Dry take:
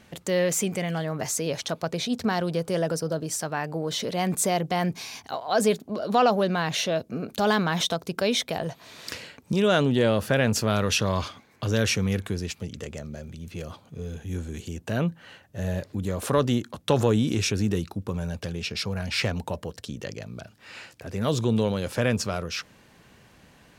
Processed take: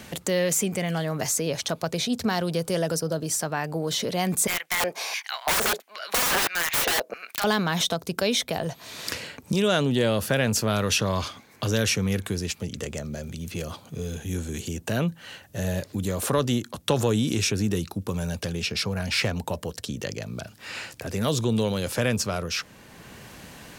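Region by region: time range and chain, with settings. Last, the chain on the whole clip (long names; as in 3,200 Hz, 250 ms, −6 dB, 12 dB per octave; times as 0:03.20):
0:04.47–0:07.44: auto-filter high-pass square 1.5 Hz 540–2,100 Hz + wrap-around overflow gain 22 dB + parametric band 1,100 Hz +6 dB 2.8 octaves
whole clip: high-shelf EQ 6,100 Hz +7.5 dB; multiband upward and downward compressor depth 40%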